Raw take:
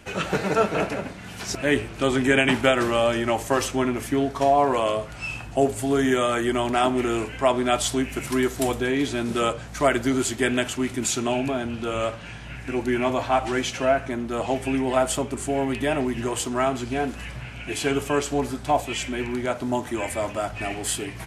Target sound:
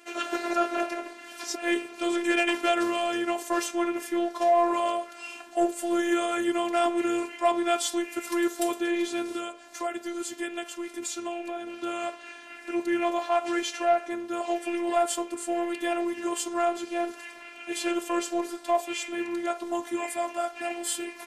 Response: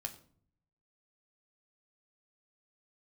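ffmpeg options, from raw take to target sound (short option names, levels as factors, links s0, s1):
-filter_complex "[0:a]highpass=f=270:w=0.5412,highpass=f=270:w=1.3066,asettb=1/sr,asplit=3[s0][s1][s2];[s0]atrim=end=9.354[s3];[s1]atrim=start=9.35:end=11.67,asetpts=PTS-STARTPTS,afade=t=in:d=0.004:c=qsin,afade=t=out:st=2.316:d=0.004:c=qsin,acompressor=threshold=0.0224:ratio=2[s4];[s2]atrim=start=11.666[s5];[s3][s4]acrossfade=d=0.004:c1=hsin:c2=qsin[s6];[s6][s5]acrossfade=d=0.004:c1=qsin:c2=hsin,asoftclip=type=tanh:threshold=0.266,afftfilt=real='hypot(re,im)*cos(PI*b)':imag='0':win_size=512:overlap=0.75"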